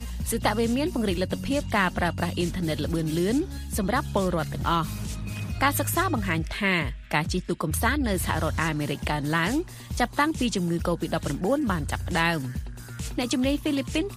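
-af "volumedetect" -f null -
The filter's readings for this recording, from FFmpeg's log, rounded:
mean_volume: -26.2 dB
max_volume: -7.6 dB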